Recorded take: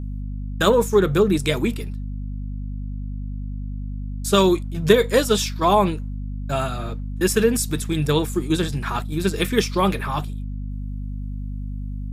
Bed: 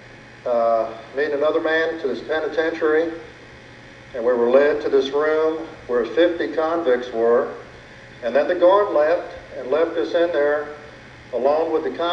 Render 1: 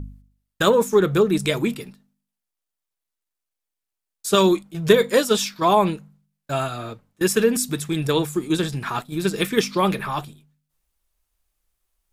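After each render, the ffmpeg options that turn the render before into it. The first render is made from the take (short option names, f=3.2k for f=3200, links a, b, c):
-af "bandreject=f=50:t=h:w=4,bandreject=f=100:t=h:w=4,bandreject=f=150:t=h:w=4,bandreject=f=200:t=h:w=4,bandreject=f=250:t=h:w=4"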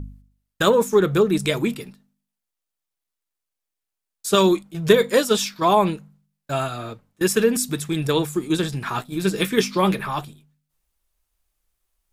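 -filter_complex "[0:a]asettb=1/sr,asplit=3[a][b][c];[a]atrim=end=8.894[d];[b]atrim=start=8.89:end=9.95,asetpts=PTS-STARTPTS,afade=t=in:d=0.004:c=qsin,afade=t=out:st=1.056:d=0.004:c=qsin,asplit=2[e][f];[f]adelay=16,volume=-9dB[g];[e][g]amix=inputs=2:normalize=0,atrim=end_sample=46746[h];[c]atrim=start=9.946[i];[d][h]acrossfade=d=0.004:c1=hsin:c2=qsin[j];[j][i]acrossfade=d=0.004:c1=qsin:c2=hsin"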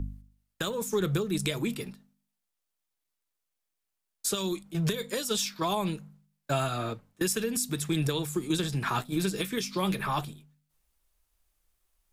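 -filter_complex "[0:a]acrossover=split=150|3000[a][b][c];[b]acompressor=threshold=-25dB:ratio=6[d];[a][d][c]amix=inputs=3:normalize=0,alimiter=limit=-17.5dB:level=0:latency=1:release=426"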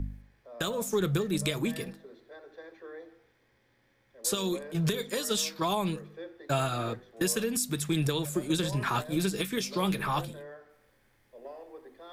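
-filter_complex "[1:a]volume=-27dB[a];[0:a][a]amix=inputs=2:normalize=0"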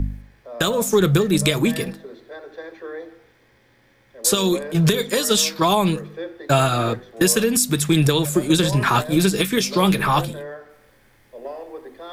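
-af "volume=11.5dB"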